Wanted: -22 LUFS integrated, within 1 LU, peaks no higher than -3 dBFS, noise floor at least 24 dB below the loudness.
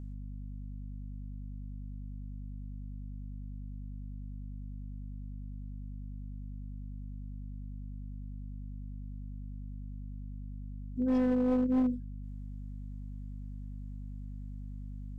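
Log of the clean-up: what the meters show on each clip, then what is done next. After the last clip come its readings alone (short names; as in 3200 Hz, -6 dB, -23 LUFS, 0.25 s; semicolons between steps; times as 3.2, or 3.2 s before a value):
clipped 0.6%; flat tops at -23.5 dBFS; hum 50 Hz; harmonics up to 250 Hz; hum level -39 dBFS; loudness -39.0 LUFS; peak -23.5 dBFS; loudness target -22.0 LUFS
-> clip repair -23.5 dBFS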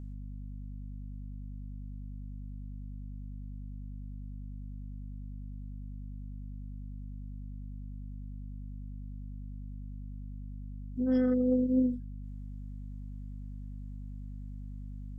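clipped 0.0%; hum 50 Hz; harmonics up to 200 Hz; hum level -39 dBFS
-> notches 50/100/150/200 Hz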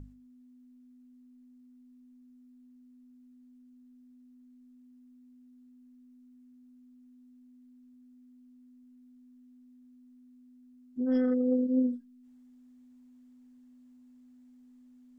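hum none; loudness -29.0 LUFS; peak -18.0 dBFS; loudness target -22.0 LUFS
-> gain +7 dB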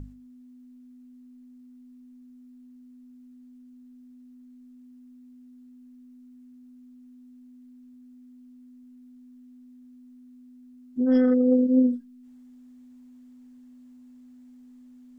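loudness -22.0 LUFS; peak -11.0 dBFS; noise floor -50 dBFS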